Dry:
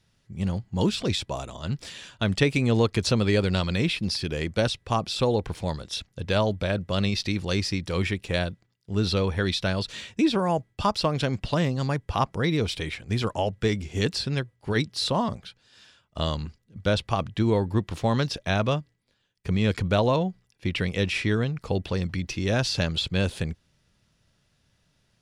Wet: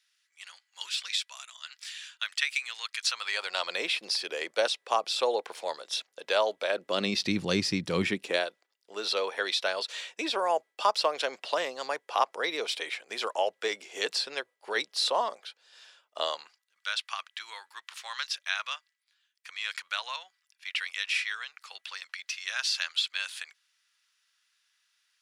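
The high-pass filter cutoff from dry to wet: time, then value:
high-pass filter 24 dB per octave
0:02.98 1,500 Hz
0:03.79 480 Hz
0:06.67 480 Hz
0:07.32 140 Hz
0:08.03 140 Hz
0:08.50 490 Hz
0:16.24 490 Hz
0:16.81 1,300 Hz

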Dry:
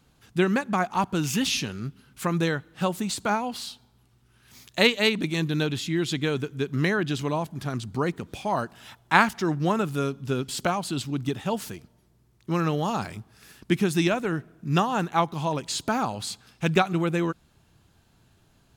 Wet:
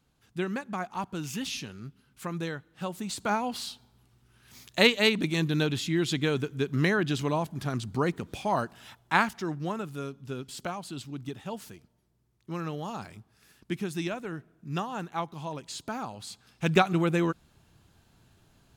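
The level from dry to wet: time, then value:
0:02.85 −9 dB
0:03.45 −1 dB
0:08.56 −1 dB
0:09.82 −9.5 dB
0:16.24 −9.5 dB
0:16.78 −0.5 dB

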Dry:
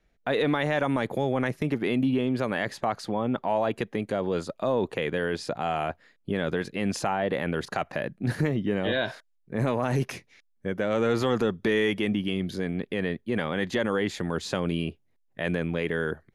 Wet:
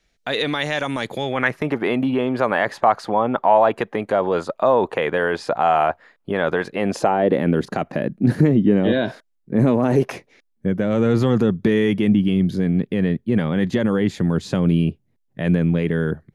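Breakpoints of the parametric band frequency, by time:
parametric band +13.5 dB 2.4 octaves
0:01.07 5,500 Hz
0:01.64 930 Hz
0:06.68 930 Hz
0:07.44 240 Hz
0:09.81 240 Hz
0:10.12 750 Hz
0:10.72 150 Hz

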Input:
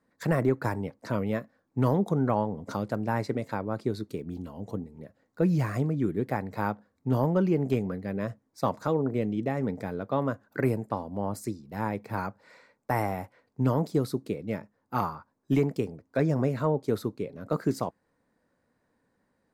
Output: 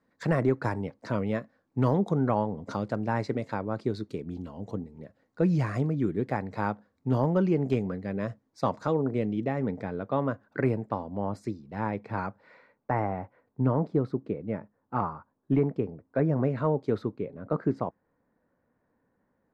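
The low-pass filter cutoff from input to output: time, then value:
0:09.10 6,100 Hz
0:09.68 3,600 Hz
0:12.26 3,600 Hz
0:13.07 1,600 Hz
0:16.23 1,600 Hz
0:16.78 3,700 Hz
0:17.37 1,700 Hz

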